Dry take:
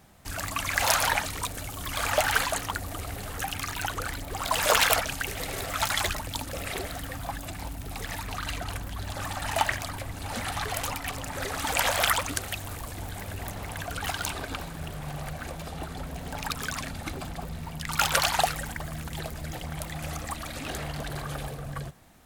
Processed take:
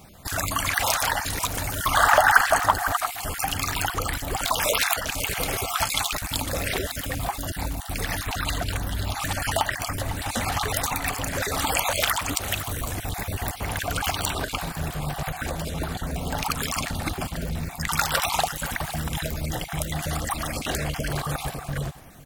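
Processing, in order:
time-frequency cells dropped at random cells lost 24%
high-shelf EQ 8,900 Hz +3.5 dB
single-tap delay 502 ms −20 dB
downward compressor 3 to 1, threshold −30 dBFS, peak gain reduction 10.5 dB
0:01.72–0:03.07: flat-topped bell 1,100 Hz +9.5 dB
level +8 dB

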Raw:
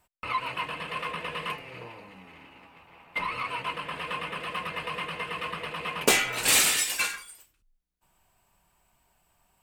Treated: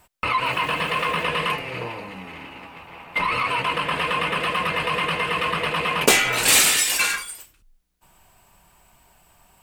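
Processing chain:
in parallel at −2 dB: compressor whose output falls as the input rises −35 dBFS, ratio −1
0:00.45–0:01.24: on the sum: centre clipping without the shift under −44 dBFS
level +5 dB

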